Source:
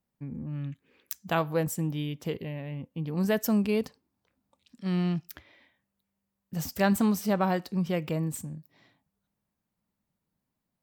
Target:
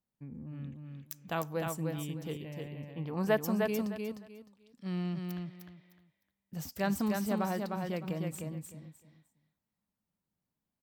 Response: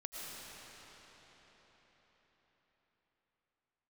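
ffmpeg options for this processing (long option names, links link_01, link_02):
-filter_complex "[0:a]asettb=1/sr,asplit=3[link_01][link_02][link_03];[link_01]atrim=end=2.874[link_04];[link_02]atrim=start=2.87:end=3.37,asetpts=PTS-STARTPTS,afade=type=in:duration=0.004:curve=qsin,afade=type=out:start_time=0.496:duration=0.004:curve=qsin,equalizer=frequency=980:width_type=o:width=2.2:gain=11[link_05];[link_03]atrim=start=3.366[link_06];[link_04][link_05]acrossfade=duration=0.004:curve1=hsin:curve2=qsin[link_07];[link_07][link_06]acrossfade=duration=0.004:curve1=qsin:curve2=hsin,aecho=1:1:305|610|915:0.631|0.139|0.0305,volume=-7.5dB"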